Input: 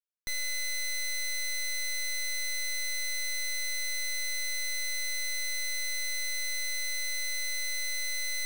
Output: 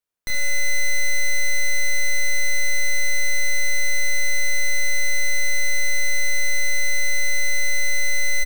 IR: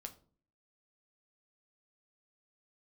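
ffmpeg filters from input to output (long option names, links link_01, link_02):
-filter_complex "[0:a]aecho=1:1:30|75|142.5|243.8|395.6:0.631|0.398|0.251|0.158|0.1,asplit=2[link_01][link_02];[1:a]atrim=start_sample=2205,lowpass=2600[link_03];[link_02][link_03]afir=irnorm=-1:irlink=0,volume=-0.5dB[link_04];[link_01][link_04]amix=inputs=2:normalize=0,volume=5.5dB"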